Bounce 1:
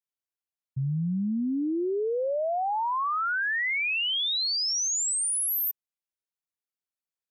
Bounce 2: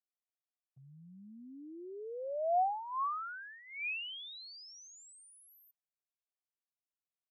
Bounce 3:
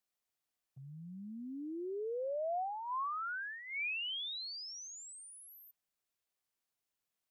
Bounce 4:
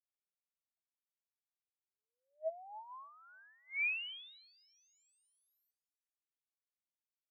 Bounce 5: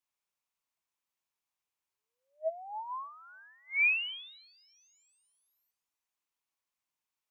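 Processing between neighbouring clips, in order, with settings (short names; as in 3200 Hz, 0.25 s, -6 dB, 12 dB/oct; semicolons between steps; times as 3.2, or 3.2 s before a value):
vowel filter a
compressor 6:1, threshold -43 dBFS, peak gain reduction 15 dB; gain +6.5 dB
rippled Chebyshev high-pass 620 Hz, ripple 9 dB; feedback echo 0.297 s, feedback 56%, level -23.5 dB; upward expander 2.5:1, over -51 dBFS; gain +4 dB
fifteen-band EQ 1000 Hz +9 dB, 2500 Hz +5 dB, 6300 Hz +3 dB; gain +3 dB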